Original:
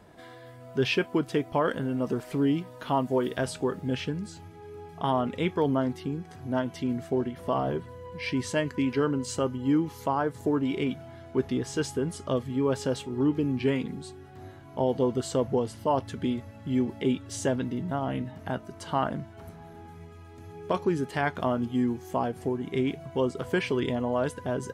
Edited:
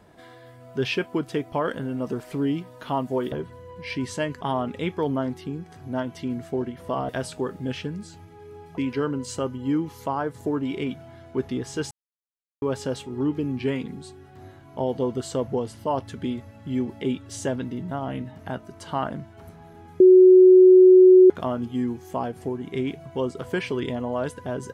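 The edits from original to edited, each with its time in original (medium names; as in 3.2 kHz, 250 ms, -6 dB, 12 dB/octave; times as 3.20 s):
3.32–5.00 s: swap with 7.68–8.77 s
11.91–12.62 s: mute
20.00–21.30 s: bleep 370 Hz -8 dBFS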